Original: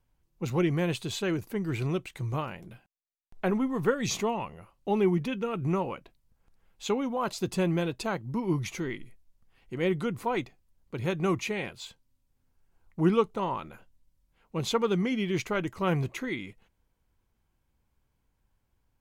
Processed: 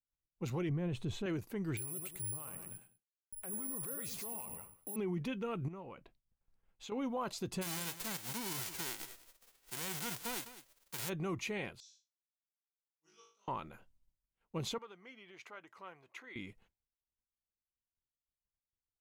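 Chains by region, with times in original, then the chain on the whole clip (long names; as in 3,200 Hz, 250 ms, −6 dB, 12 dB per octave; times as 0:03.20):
0:00.69–0:01.26: spectral tilt −3 dB per octave + notch filter 4,700 Hz, Q 10
0:01.77–0:04.96: repeating echo 101 ms, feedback 29%, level −12 dB + two-band tremolo in antiphase 5.1 Hz, depth 50%, crossover 470 Hz + bad sample-rate conversion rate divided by 4×, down none, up zero stuff
0:05.68–0:06.92: high-shelf EQ 5,100 Hz −7 dB + downward compressor 4 to 1, threshold −40 dBFS
0:07.61–0:11.08: spectral envelope flattened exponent 0.1 + single-tap delay 201 ms −20 dB
0:11.80–0:13.48: resonant band-pass 5,800 Hz, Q 10 + flutter between parallel walls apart 3.3 metres, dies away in 0.66 s
0:14.78–0:16.36: spectral tilt −4 dB per octave + downward compressor, threshold −26 dBFS + high-pass filter 1,100 Hz
whole clip: downward expander −57 dBFS; brickwall limiter −23.5 dBFS; level −6 dB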